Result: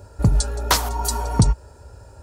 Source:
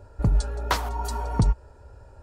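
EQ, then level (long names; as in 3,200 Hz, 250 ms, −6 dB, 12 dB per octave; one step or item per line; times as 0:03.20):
high-pass filter 55 Hz
bass and treble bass +2 dB, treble +11 dB
+4.5 dB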